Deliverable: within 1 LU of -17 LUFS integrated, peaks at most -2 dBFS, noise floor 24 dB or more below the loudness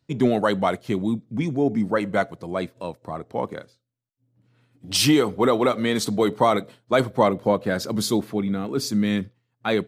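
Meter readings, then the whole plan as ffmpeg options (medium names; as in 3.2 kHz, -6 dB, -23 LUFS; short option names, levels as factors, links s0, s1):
loudness -23.0 LUFS; peak level -6.0 dBFS; loudness target -17.0 LUFS
-> -af "volume=2,alimiter=limit=0.794:level=0:latency=1"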